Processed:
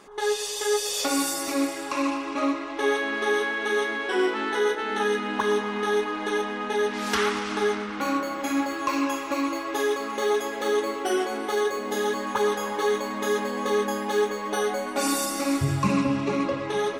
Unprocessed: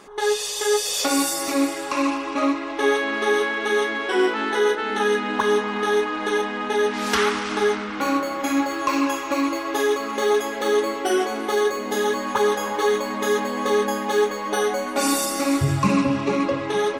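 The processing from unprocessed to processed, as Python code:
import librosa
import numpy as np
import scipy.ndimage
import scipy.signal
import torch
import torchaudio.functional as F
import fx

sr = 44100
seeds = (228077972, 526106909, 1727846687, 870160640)

y = fx.echo_feedback(x, sr, ms=116, feedback_pct=57, wet_db=-16)
y = F.gain(torch.from_numpy(y), -4.0).numpy()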